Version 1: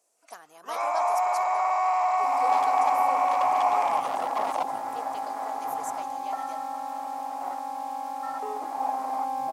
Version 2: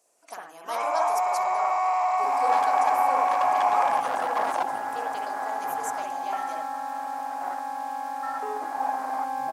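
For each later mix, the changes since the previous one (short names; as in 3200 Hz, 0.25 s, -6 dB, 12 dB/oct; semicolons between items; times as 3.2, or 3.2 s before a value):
second sound: add bell 1600 Hz +12 dB 0.31 oct; reverb: on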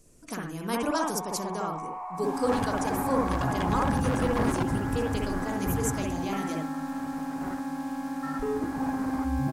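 speech +5.5 dB; first sound: add band-pass 870 Hz, Q 4; master: remove resonant high-pass 730 Hz, resonance Q 3.5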